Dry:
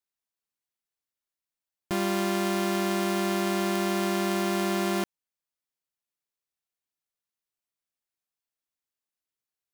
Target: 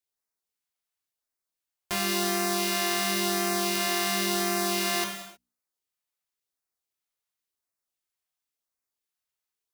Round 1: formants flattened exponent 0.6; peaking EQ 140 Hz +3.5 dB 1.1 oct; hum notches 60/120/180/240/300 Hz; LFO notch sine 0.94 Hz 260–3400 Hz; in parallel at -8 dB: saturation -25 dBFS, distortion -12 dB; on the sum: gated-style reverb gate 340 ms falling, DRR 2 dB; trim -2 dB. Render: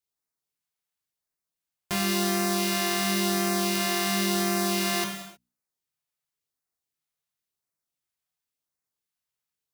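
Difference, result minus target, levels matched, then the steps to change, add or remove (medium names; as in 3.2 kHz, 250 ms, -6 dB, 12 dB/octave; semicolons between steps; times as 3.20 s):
125 Hz band +5.5 dB
change: peaking EQ 140 Hz -7.5 dB 1.1 oct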